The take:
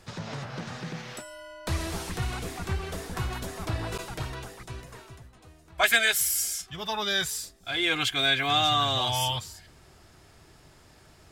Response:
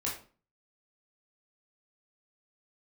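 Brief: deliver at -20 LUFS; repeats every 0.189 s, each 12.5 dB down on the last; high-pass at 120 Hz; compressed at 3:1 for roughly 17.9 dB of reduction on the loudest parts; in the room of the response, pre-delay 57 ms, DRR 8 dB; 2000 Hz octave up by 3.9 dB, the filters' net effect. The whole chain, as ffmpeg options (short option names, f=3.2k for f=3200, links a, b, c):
-filter_complex "[0:a]highpass=120,equalizer=f=2k:t=o:g=5,acompressor=threshold=-39dB:ratio=3,aecho=1:1:189|378|567:0.237|0.0569|0.0137,asplit=2[a][b];[1:a]atrim=start_sample=2205,adelay=57[c];[b][c]afir=irnorm=-1:irlink=0,volume=-12.5dB[d];[a][d]amix=inputs=2:normalize=0,volume=17.5dB"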